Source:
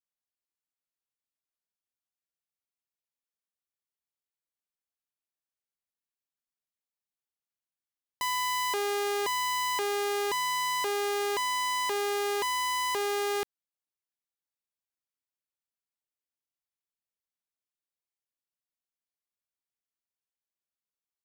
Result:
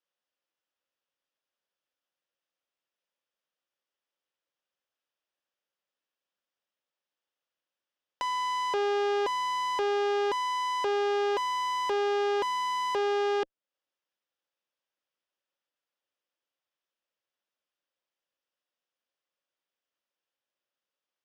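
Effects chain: cabinet simulation 160–4700 Hz, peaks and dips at 320 Hz +4 dB, 540 Hz +10 dB, 2.2 kHz -6 dB, 4.2 kHz -9 dB; one-sided clip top -30.5 dBFS, bottom -22.5 dBFS; tape noise reduction on one side only encoder only; trim +1.5 dB

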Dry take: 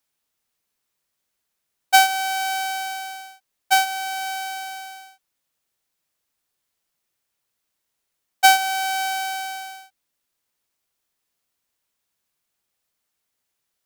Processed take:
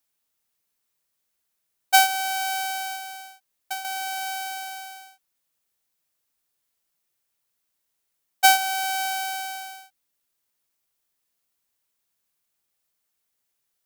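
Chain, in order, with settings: treble shelf 8.7 kHz +6 dB; 2.95–3.85 s: compression 4:1, threshold -29 dBFS, peak gain reduction 14 dB; trim -3 dB

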